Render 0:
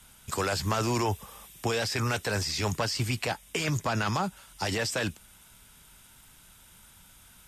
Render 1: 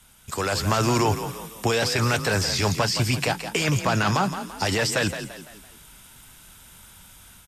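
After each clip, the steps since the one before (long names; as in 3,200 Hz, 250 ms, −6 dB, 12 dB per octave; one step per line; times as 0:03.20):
automatic gain control gain up to 6 dB
echo with shifted repeats 169 ms, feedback 41%, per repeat +32 Hz, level −10 dB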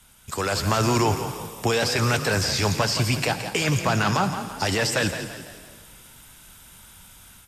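on a send at −12 dB: high-shelf EQ 9,900 Hz +8.5 dB + convolution reverb RT60 1.9 s, pre-delay 57 ms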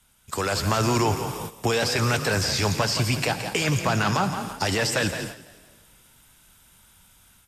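noise gate −34 dBFS, range −10 dB
in parallel at −2.5 dB: downward compressor, threshold −31 dBFS, peak gain reduction 13.5 dB
on the sum: level −2.5 dB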